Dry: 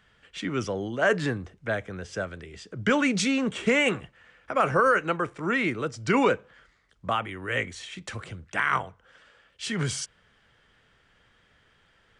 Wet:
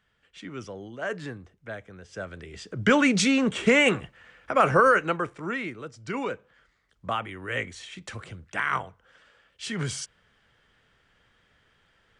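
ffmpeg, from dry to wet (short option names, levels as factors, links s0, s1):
-af "volume=3.16,afade=t=in:st=2.08:d=0.57:silence=0.251189,afade=t=out:st=4.77:d=0.95:silence=0.251189,afade=t=in:st=6.28:d=0.85:silence=0.446684"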